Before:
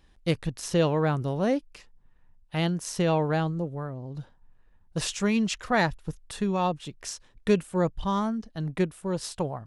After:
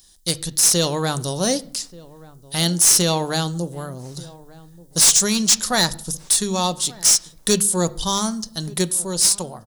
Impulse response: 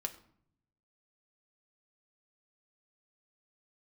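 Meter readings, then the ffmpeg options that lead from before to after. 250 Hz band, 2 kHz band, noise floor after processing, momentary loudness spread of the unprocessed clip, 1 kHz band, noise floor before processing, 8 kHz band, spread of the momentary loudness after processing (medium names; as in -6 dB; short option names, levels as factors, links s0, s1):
+2.5 dB, +4.0 dB, -49 dBFS, 12 LU, +3.5 dB, -59 dBFS, +24.0 dB, 16 LU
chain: -filter_complex "[0:a]highshelf=f=2300:g=9.5,bandreject=f=50:t=h:w=6,bandreject=f=100:t=h:w=6,bandreject=f=150:t=h:w=6,bandreject=f=200:t=h:w=6,dynaudnorm=f=120:g=13:m=1.78,aexciter=amount=8.4:drive=8.8:freq=3800,asoftclip=type=tanh:threshold=0.794,asplit=2[s0][s1];[s1]adelay=1182,lowpass=f=890:p=1,volume=0.1,asplit=2[s2][s3];[s3]adelay=1182,lowpass=f=890:p=1,volume=0.35,asplit=2[s4][s5];[s5]adelay=1182,lowpass=f=890:p=1,volume=0.35[s6];[s0][s2][s4][s6]amix=inputs=4:normalize=0,asplit=2[s7][s8];[1:a]atrim=start_sample=2205,lowpass=3200[s9];[s8][s9]afir=irnorm=-1:irlink=0,volume=0.841[s10];[s7][s10]amix=inputs=2:normalize=0,volume=0.473"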